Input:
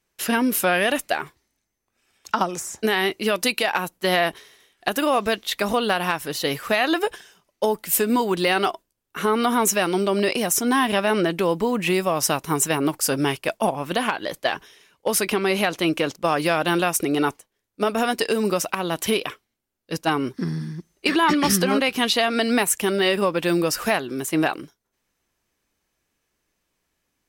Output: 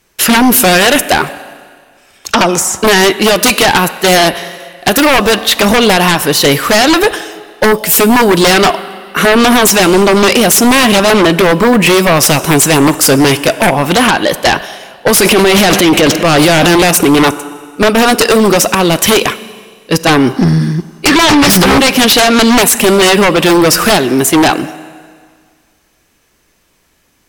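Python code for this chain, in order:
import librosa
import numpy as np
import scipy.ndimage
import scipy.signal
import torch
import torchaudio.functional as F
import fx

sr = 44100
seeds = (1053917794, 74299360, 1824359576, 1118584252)

y = fx.rev_schroeder(x, sr, rt60_s=1.8, comb_ms=31, drr_db=18.5)
y = fx.transient(y, sr, attack_db=-5, sustain_db=9, at=(15.2, 16.91))
y = fx.fold_sine(y, sr, drive_db=20, ceiling_db=1.0)
y = y * 10.0 ** (-4.5 / 20.0)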